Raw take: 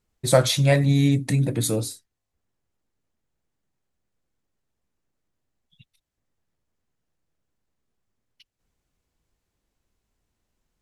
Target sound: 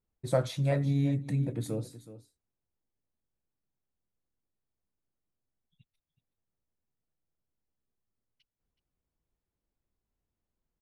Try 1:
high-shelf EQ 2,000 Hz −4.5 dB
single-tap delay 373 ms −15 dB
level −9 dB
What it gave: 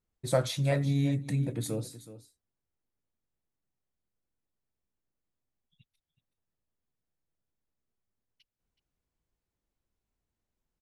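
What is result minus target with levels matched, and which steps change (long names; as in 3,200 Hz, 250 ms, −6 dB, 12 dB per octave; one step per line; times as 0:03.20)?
4,000 Hz band +5.5 dB
change: high-shelf EQ 2,000 Hz −12 dB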